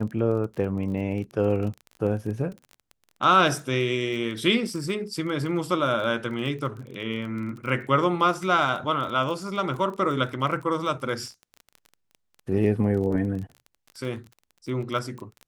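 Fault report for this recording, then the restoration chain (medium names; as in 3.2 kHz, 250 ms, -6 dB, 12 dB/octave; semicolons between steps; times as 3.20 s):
crackle 22 per s -33 dBFS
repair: de-click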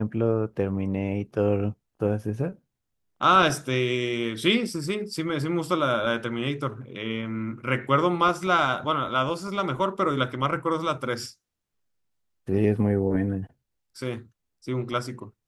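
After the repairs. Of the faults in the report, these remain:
nothing left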